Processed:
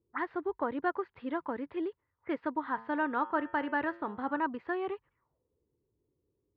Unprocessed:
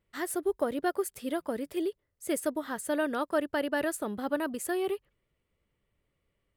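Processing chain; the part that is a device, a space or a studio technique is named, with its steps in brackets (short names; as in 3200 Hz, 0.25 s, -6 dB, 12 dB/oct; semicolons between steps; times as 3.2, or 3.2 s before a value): envelope filter bass rig (envelope low-pass 380–4300 Hz up, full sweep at -36 dBFS; speaker cabinet 71–2000 Hz, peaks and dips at 190 Hz -10 dB, 400 Hz -5 dB, 600 Hz -9 dB, 970 Hz +9 dB); 2.66–4.4 de-hum 113.4 Hz, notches 30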